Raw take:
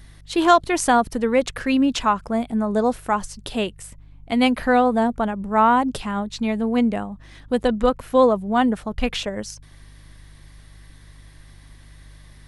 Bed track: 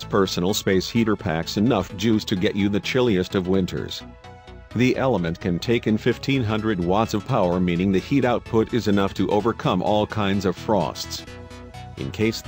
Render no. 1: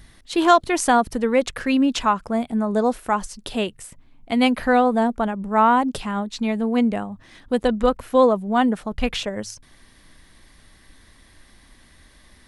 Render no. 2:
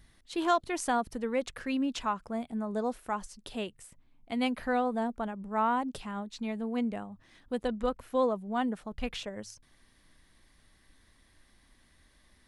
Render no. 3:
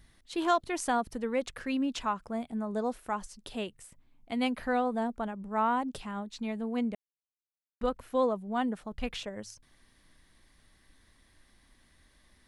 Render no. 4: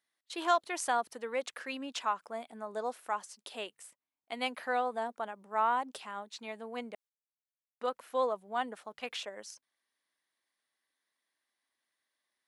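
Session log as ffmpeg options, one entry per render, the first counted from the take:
-af "bandreject=f=50:t=h:w=4,bandreject=f=100:t=h:w=4,bandreject=f=150:t=h:w=4"
-af "volume=0.251"
-filter_complex "[0:a]asplit=3[s0][s1][s2];[s0]atrim=end=6.95,asetpts=PTS-STARTPTS,afade=t=out:st=6.946:d=0.004:c=hsin[s3];[s1]atrim=start=6.95:end=7.81,asetpts=PTS-STARTPTS,volume=0[s4];[s2]atrim=start=7.81,asetpts=PTS-STARTPTS,afade=t=in:d=0.004:c=hsin[s5];[s3][s4][s5]concat=n=3:v=0:a=1"
-af "agate=range=0.126:threshold=0.00224:ratio=16:detection=peak,highpass=540"

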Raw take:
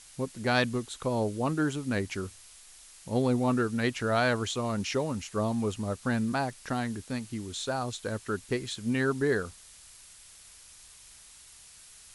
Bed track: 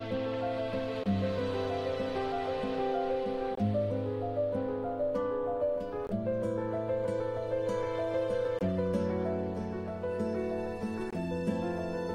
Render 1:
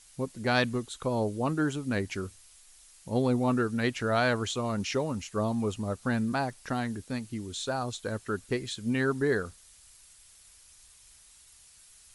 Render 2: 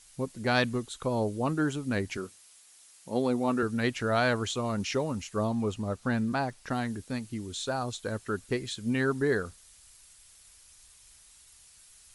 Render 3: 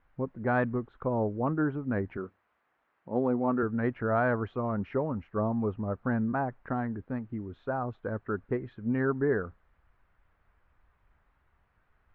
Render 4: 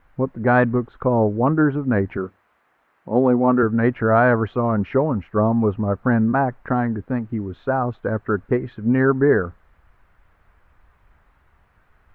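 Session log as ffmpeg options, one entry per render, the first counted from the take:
-af "afftdn=nr=6:nf=-53"
-filter_complex "[0:a]asettb=1/sr,asplit=3[s0][s1][s2];[s0]atrim=end=2.174[s3];[s1]atrim=start=2.17:end=3.63,asetpts=PTS-STARTPTS,afade=t=in:d=0.004:c=qsin,afade=t=out:st=1.456:d=0.004:c=qsin,highpass=200[s4];[s2]atrim=start=3.626[s5];[s3][s4]acrossfade=d=0.004:c1=hsin:c2=qsin[s6];[s6][s5]acrossfade=d=0.004:c1=qsin:c2=hsin,asettb=1/sr,asplit=3[s7][s8][s9];[s7]atrim=end=5.474[s10];[s8]atrim=start=5.47:end=6.71,asetpts=PTS-STARTPTS,afade=t=in:d=0.004:c=qsin,afade=t=out:st=1.236:d=0.004:c=qsin,highshelf=f=9200:g=-8.5[s11];[s9]atrim=start=6.706[s12];[s10][s11]acrossfade=d=0.004:c1=hsin:c2=qsin[s13];[s13][s12]acrossfade=d=0.004:c1=qsin:c2=hsin"
-af "lowpass=f=1600:w=0.5412,lowpass=f=1600:w=1.3066"
-af "volume=3.55"

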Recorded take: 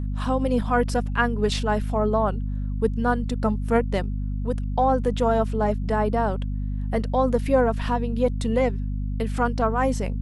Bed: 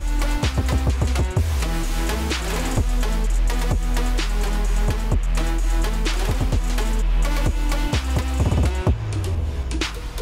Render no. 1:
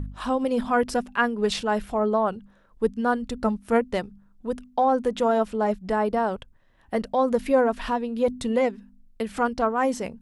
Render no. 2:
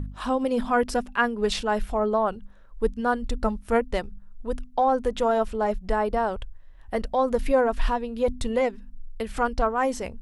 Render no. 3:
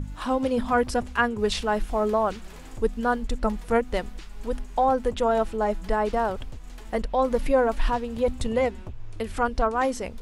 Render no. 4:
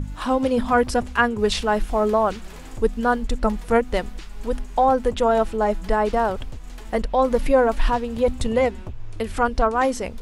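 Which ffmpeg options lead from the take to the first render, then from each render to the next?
-af "bandreject=f=50:t=h:w=4,bandreject=f=100:t=h:w=4,bandreject=f=150:t=h:w=4,bandreject=f=200:t=h:w=4,bandreject=f=250:t=h:w=4"
-af "asubboost=boost=8.5:cutoff=60"
-filter_complex "[1:a]volume=0.0944[s0];[0:a][s0]amix=inputs=2:normalize=0"
-af "volume=1.58"

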